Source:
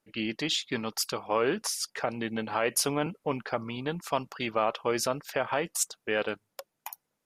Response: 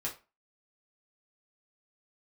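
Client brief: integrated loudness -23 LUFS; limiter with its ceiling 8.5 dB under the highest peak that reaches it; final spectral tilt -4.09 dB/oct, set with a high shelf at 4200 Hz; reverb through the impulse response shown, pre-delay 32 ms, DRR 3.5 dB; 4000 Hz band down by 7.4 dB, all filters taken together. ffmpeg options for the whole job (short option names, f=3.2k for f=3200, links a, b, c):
-filter_complex "[0:a]equalizer=f=4k:t=o:g=-7,highshelf=f=4.2k:g=-5,alimiter=limit=-22.5dB:level=0:latency=1,asplit=2[a][b];[1:a]atrim=start_sample=2205,adelay=32[c];[b][c]afir=irnorm=-1:irlink=0,volume=-5.5dB[d];[a][d]amix=inputs=2:normalize=0,volume=11dB"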